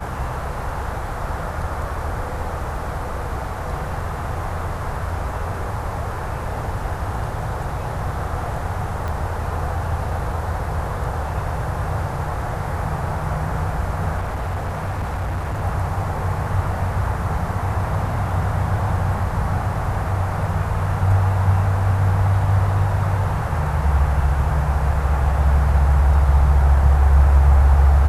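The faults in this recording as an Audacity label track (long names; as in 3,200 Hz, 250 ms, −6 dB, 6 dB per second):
9.080000	9.080000	click
14.170000	15.630000	clipping −20.5 dBFS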